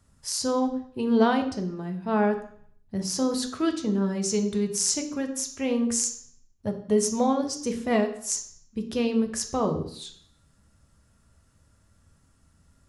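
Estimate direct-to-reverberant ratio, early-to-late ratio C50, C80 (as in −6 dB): 5.0 dB, 10.5 dB, 13.5 dB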